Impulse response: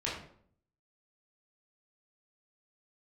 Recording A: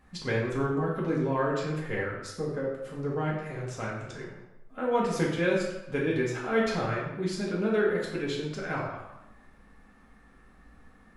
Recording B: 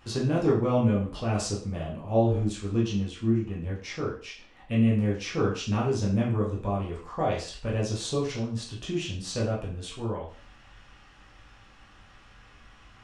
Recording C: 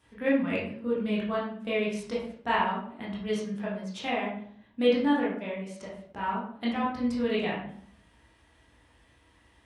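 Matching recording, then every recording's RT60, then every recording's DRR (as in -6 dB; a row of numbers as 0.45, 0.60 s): C; 0.95, 0.45, 0.60 s; -5.0, -5.5, -6.5 dB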